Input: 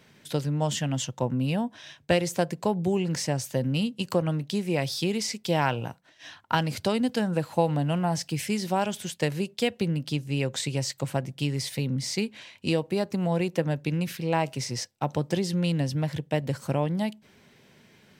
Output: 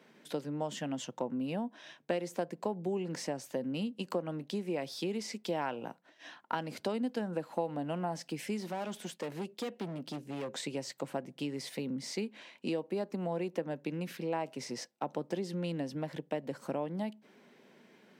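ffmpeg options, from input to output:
-filter_complex "[0:a]asettb=1/sr,asplit=3[a][b][c];[a]atrim=end=8.604[d];[b]atrim=start=8.6:end=10.55,asetpts=PTS-STARTPTS,afade=t=in:d=0.004:c=qsin,afade=t=out:st=1.946:d=0.004:c=qsin,volume=28.5dB,asoftclip=hard,volume=-28.5dB[e];[c]atrim=start=10.546[f];[d][e]acrossfade=d=0.004:c1=hsin:c2=qsin[g];[g][f]acrossfade=d=0.004:c1=qsin:c2=hsin,highpass=f=210:w=0.5412,highpass=f=210:w=1.3066,highshelf=f=2.1k:g=-10.5,acompressor=threshold=-36dB:ratio=2"

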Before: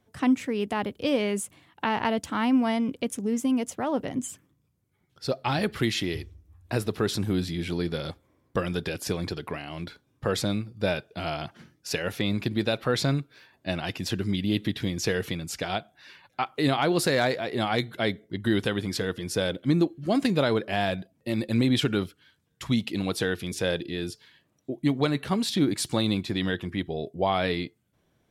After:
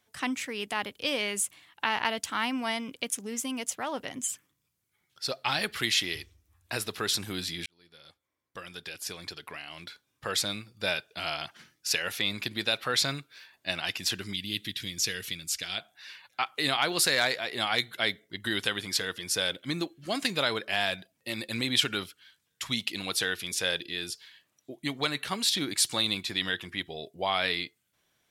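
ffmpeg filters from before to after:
-filter_complex "[0:a]asettb=1/sr,asplit=3[a][b][c];[a]atrim=end=14.334[d];[b]atrim=start=14.33:end=15.78,asetpts=PTS-STARTPTS,afade=t=in:d=0.004:c=qsin,afade=t=out:st=1.446:d=0.004:c=qsin,equalizer=f=820:w=0.64:g=-12.5[e];[c]atrim=start=15.776[f];[d][e]acrossfade=d=0.004:c1=hsin:c2=qsin[g];[g][f]acrossfade=d=0.004:c1=qsin:c2=hsin,asplit=2[h][i];[h]atrim=end=7.66,asetpts=PTS-STARTPTS,afade=t=out:st=7.656:d=0.004:c=hsin[j];[i]atrim=start=7.66,asetpts=PTS-STARTPTS,afade=t=in:d=3.07[k];[j][k]concat=n=2:v=0:a=1,tiltshelf=f=860:g=-9.5,volume=-3.5dB"

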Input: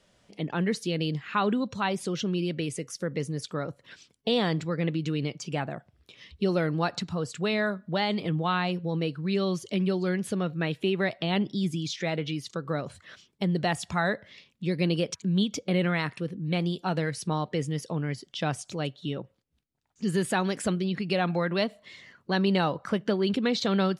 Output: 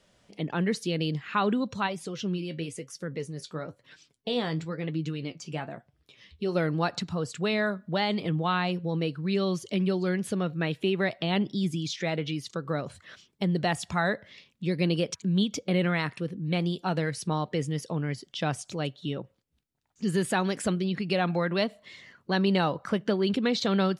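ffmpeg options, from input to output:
-filter_complex "[0:a]asplit=3[a][b][c];[a]afade=t=out:st=1.86:d=0.02[d];[b]flanger=delay=6.3:depth=6.8:regen=52:speed=1:shape=sinusoidal,afade=t=in:st=1.86:d=0.02,afade=t=out:st=6.54:d=0.02[e];[c]afade=t=in:st=6.54:d=0.02[f];[d][e][f]amix=inputs=3:normalize=0"

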